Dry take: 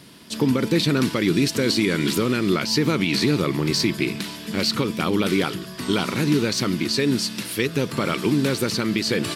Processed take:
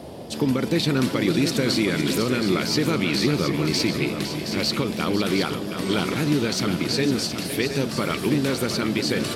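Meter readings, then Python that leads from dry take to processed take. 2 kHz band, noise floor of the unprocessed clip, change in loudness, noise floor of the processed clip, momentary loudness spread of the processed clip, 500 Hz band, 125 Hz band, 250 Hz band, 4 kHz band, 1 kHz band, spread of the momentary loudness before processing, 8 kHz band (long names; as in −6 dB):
−1.0 dB, −37 dBFS, −1.0 dB, −31 dBFS, 4 LU, −0.5 dB, −1.0 dB, −1.0 dB, −1.0 dB, −0.5 dB, 5 LU, −1.0 dB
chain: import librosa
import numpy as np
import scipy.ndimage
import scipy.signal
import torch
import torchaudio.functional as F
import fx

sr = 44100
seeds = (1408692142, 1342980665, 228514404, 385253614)

y = x + 10.0 ** (-11.0 / 20.0) * np.pad(x, (int(509 * sr / 1000.0), 0))[:len(x)]
y = fx.dmg_noise_band(y, sr, seeds[0], low_hz=65.0, high_hz=670.0, level_db=-36.0)
y = y + 10.0 ** (-8.5 / 20.0) * np.pad(y, (int(720 * sr / 1000.0), 0))[:len(y)]
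y = y * librosa.db_to_amplitude(-2.0)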